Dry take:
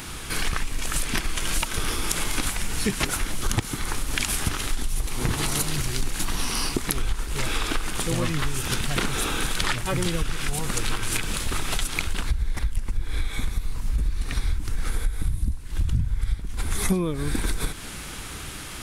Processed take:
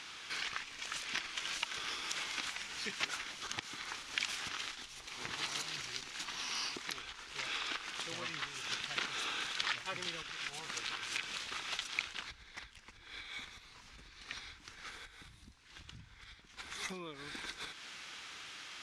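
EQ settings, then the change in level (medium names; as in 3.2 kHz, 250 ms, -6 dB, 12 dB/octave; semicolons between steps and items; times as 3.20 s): band-pass filter 6.3 kHz, Q 4.1; distance through air 440 m; +18.0 dB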